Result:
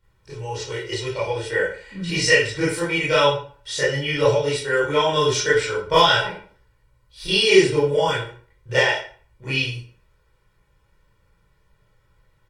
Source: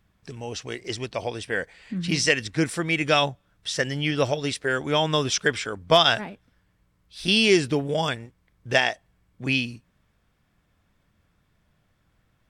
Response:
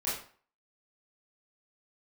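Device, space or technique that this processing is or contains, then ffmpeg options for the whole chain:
microphone above a desk: -filter_complex "[0:a]aecho=1:1:2.1:0.87[a];[1:a]atrim=start_sample=2205[b];[a][b]afir=irnorm=-1:irlink=0,volume=-4dB"

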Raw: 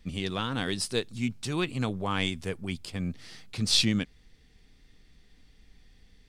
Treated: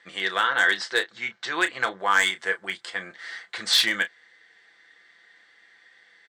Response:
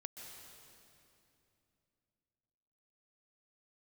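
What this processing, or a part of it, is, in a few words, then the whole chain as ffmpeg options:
megaphone: -filter_complex "[0:a]asettb=1/sr,asplit=3[a][b][c];[a]atrim=end=0.474[d];[b]atrim=start=0.47:end=1.99,asetpts=PTS-STARTPTS,afade=t=in:d=0.004:c=qsin,afade=t=out:st=1.516:d=0.004:c=qsin,lowpass=f=6.2k:w=0.5412,lowpass=f=6.2k:w=1.3066[e];[c]atrim=start=1.986[f];[d][e]acrossfade=d=0.004:c1=hsin:c2=qsin[g];[g][f]acrossfade=d=0.004:c1=qsin:c2=hsin,highpass=670,lowpass=3.9k,equalizer=f=2k:t=o:w=0.48:g=8,asoftclip=type=hard:threshold=-20.5dB,equalizer=f=160:t=o:w=0.33:g=-8,equalizer=f=250:t=o:w=0.33:g=-8,equalizer=f=1.6k:t=o:w=0.33:g=9,equalizer=f=2.5k:t=o:w=0.33:g=-11,equalizer=f=5k:t=o:w=0.33:g=-4,equalizer=f=8k:t=o:w=0.33:g=8,aecho=1:1:5.9:0.42,asplit=2[h][i];[i]adelay=31,volume=-11dB[j];[h][j]amix=inputs=2:normalize=0,volume=8.5dB"

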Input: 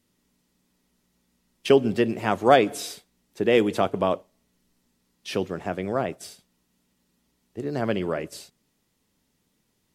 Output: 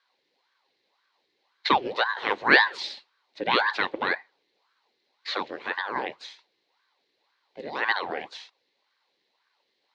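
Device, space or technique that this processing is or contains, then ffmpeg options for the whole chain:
voice changer toy: -af "aeval=exprs='val(0)*sin(2*PI*740*n/s+740*0.85/1.9*sin(2*PI*1.9*n/s))':c=same,highpass=460,equalizer=f=660:t=q:w=4:g=-8,equalizer=f=1.3k:t=q:w=4:g=-9,equalizer=f=2k:t=q:w=4:g=5,equalizer=f=4.1k:t=q:w=4:g=9,lowpass=f=4.5k:w=0.5412,lowpass=f=4.5k:w=1.3066,volume=3.5dB"

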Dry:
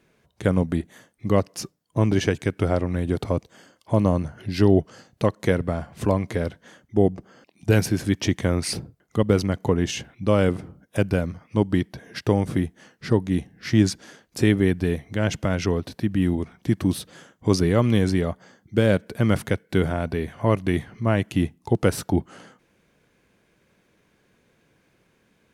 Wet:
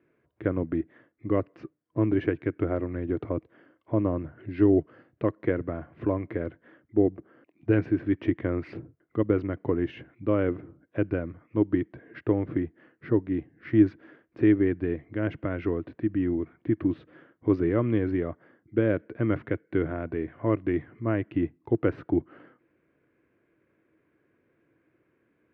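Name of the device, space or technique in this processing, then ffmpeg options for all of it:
bass cabinet: -af "highpass=82,equalizer=f=190:t=q:w=4:g=-9,equalizer=f=320:t=q:w=4:g=10,equalizer=f=830:t=q:w=4:g=-7,lowpass=f=2.2k:w=0.5412,lowpass=f=2.2k:w=1.3066,volume=-6dB"

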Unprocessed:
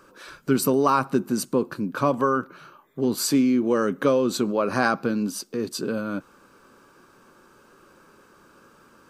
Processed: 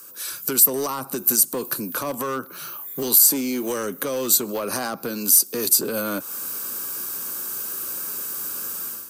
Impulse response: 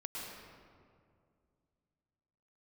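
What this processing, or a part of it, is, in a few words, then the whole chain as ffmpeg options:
FM broadcast chain: -filter_complex "[0:a]highpass=f=52:w=0.5412,highpass=f=52:w=1.3066,dynaudnorm=f=240:g=3:m=13dB,acrossover=split=160|390|1100[a][b][c][d];[a]acompressor=threshold=-41dB:ratio=4[e];[b]acompressor=threshold=-29dB:ratio=4[f];[c]acompressor=threshold=-20dB:ratio=4[g];[d]acompressor=threshold=-35dB:ratio=4[h];[e][f][g][h]amix=inputs=4:normalize=0,aemphasis=mode=production:type=75fm,alimiter=limit=-13.5dB:level=0:latency=1:release=83,asoftclip=type=hard:threshold=-17dB,lowpass=f=15k:w=0.5412,lowpass=f=15k:w=1.3066,aemphasis=mode=production:type=75fm,volume=-3dB"

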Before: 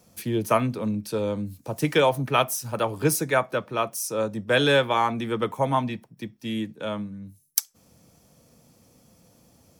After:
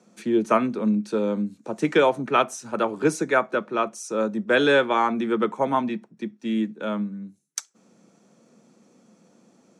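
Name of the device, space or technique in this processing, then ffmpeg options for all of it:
television speaker: -af "highpass=f=180:w=0.5412,highpass=f=180:w=1.3066,equalizer=f=210:t=q:w=4:g=7,equalizer=f=370:t=q:w=4:g=7,equalizer=f=1.4k:t=q:w=4:g=5,equalizer=f=3.1k:t=q:w=4:g=-4,equalizer=f=5k:t=q:w=4:g=-8,lowpass=f=7.5k:w=0.5412,lowpass=f=7.5k:w=1.3066"

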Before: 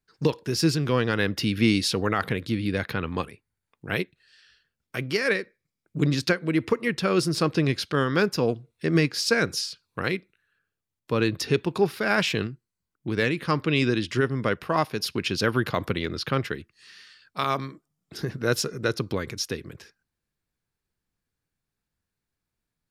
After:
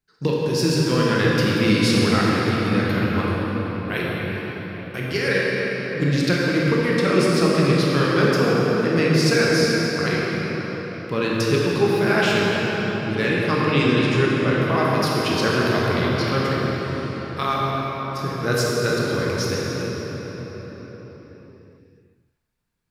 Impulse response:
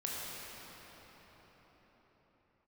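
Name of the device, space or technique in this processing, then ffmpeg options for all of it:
cathedral: -filter_complex "[1:a]atrim=start_sample=2205[a];[0:a][a]afir=irnorm=-1:irlink=0,volume=2dB"

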